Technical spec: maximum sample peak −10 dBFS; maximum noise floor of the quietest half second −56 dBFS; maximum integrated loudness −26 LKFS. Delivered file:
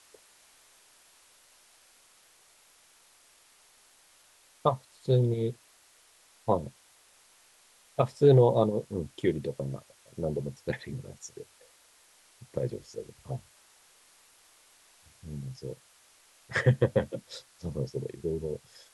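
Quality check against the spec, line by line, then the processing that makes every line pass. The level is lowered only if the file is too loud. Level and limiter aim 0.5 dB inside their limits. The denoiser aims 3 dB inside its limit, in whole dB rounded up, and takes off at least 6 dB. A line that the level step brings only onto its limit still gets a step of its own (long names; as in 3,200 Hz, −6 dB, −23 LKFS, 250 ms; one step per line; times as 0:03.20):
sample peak −8.5 dBFS: out of spec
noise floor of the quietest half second −61 dBFS: in spec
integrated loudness −30.0 LKFS: in spec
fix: brickwall limiter −10.5 dBFS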